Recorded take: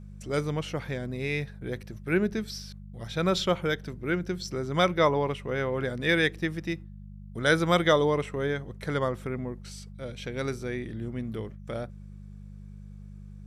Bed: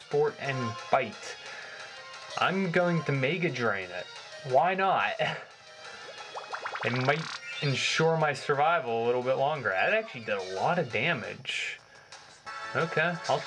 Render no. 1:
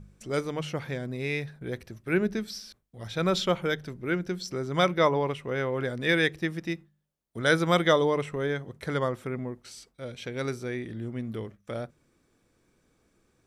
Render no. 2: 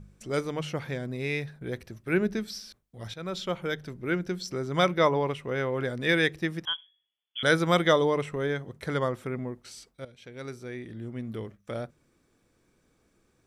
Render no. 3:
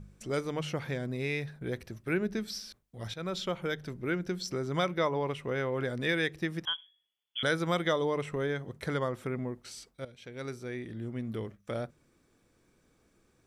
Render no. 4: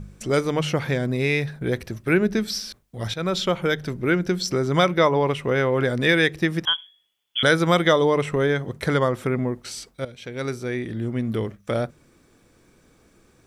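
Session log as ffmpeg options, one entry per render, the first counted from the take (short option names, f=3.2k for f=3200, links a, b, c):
-af "bandreject=f=50:t=h:w=4,bandreject=f=100:t=h:w=4,bandreject=f=150:t=h:w=4,bandreject=f=200:t=h:w=4"
-filter_complex "[0:a]asettb=1/sr,asplit=3[a][b][c];[a]atrim=end=6.654[d];[b]atrim=start=6.65:end=7.43,asetpts=PTS-STARTPTS,afade=t=in:d=0.004:c=qsin,afade=t=out:st=0.776:d=0.004:c=qsin,lowpass=f=3k:t=q:w=0.5098,lowpass=f=3k:t=q:w=0.6013,lowpass=f=3k:t=q:w=0.9,lowpass=f=3k:t=q:w=2.563,afreqshift=-3500[e];[c]atrim=start=7.426[f];[d][e]acrossfade=d=0.004:c1=hsin:c2=qsin[g];[g][f]acrossfade=d=0.004:c1=qsin:c2=hsin,asplit=3[h][i][j];[h]atrim=end=3.14,asetpts=PTS-STARTPTS,afade=t=out:st=3.136:d=0.004:c=hsin:silence=0.211349[k];[i]atrim=start=3.14:end=10.05,asetpts=PTS-STARTPTS,afade=t=in:d=0.88:silence=0.211349,afade=t=out:st=6.906:d=0.004:c=hsin:silence=0.199526[l];[j]atrim=start=10.05,asetpts=PTS-STARTPTS,afade=t=in:d=1.52:silence=0.199526[m];[k][l][m]concat=n=3:v=0:a=1"
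-af "acompressor=threshold=-30dB:ratio=2"
-af "volume=11dB"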